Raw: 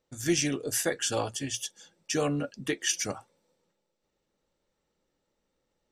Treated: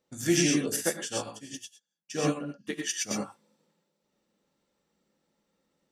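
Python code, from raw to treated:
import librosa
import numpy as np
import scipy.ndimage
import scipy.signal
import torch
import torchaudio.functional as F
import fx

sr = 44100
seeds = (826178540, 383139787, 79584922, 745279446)

y = fx.highpass(x, sr, hz=130.0, slope=6)
y = fx.peak_eq(y, sr, hz=200.0, db=6.5, octaves=0.51)
y = fx.rev_gated(y, sr, seeds[0], gate_ms=140, shape='rising', drr_db=0.5)
y = fx.upward_expand(y, sr, threshold_db=-46.0, expansion=2.5, at=(0.76, 3.11))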